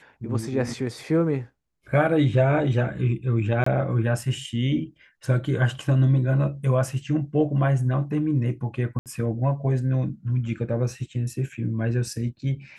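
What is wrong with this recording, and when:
3.64–3.66 gap 24 ms
8.99–9.06 gap 68 ms

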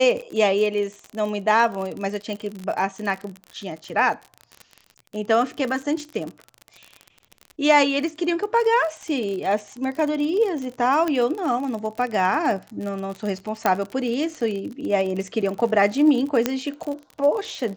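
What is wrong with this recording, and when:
crackle 45/s -28 dBFS
2.33 pop -19 dBFS
11.08 pop -12 dBFS
13.66 pop -6 dBFS
16.46 pop -5 dBFS

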